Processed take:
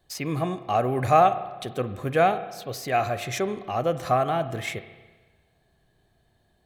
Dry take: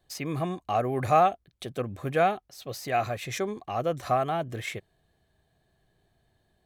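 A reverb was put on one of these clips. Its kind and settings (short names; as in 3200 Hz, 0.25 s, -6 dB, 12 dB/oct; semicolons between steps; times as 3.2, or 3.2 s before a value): spring tank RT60 1.3 s, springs 31/48 ms, chirp 20 ms, DRR 11.5 dB; gain +3 dB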